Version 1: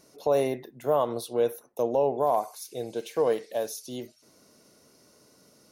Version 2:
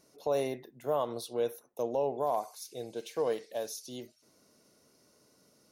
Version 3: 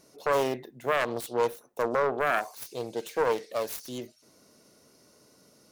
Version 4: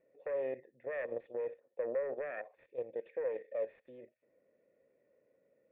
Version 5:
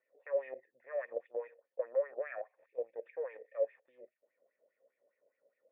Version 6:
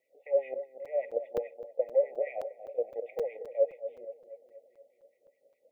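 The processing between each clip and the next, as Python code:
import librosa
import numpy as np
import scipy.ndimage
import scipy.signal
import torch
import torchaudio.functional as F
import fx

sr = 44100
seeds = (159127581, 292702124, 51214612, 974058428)

y1 = fx.dynamic_eq(x, sr, hz=4900.0, q=0.81, threshold_db=-49.0, ratio=4.0, max_db=5)
y1 = y1 * librosa.db_to_amplitude(-6.5)
y2 = fx.self_delay(y1, sr, depth_ms=0.41)
y2 = y2 * librosa.db_to_amplitude(6.0)
y3 = fx.level_steps(y2, sr, step_db=11)
y3 = fx.formant_cascade(y3, sr, vowel='e')
y3 = y3 * librosa.db_to_amplitude(5.0)
y4 = fx.filter_lfo_bandpass(y3, sr, shape='sine', hz=4.9, low_hz=560.0, high_hz=2300.0, q=3.5)
y4 = y4 * librosa.db_to_amplitude(6.0)
y5 = fx.brickwall_bandstop(y4, sr, low_hz=870.0, high_hz=1900.0)
y5 = fx.echo_bbd(y5, sr, ms=237, stages=2048, feedback_pct=57, wet_db=-12)
y5 = fx.buffer_crackle(y5, sr, first_s=0.85, period_s=0.26, block=256, kind='zero')
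y5 = y5 * librosa.db_to_amplitude(6.5)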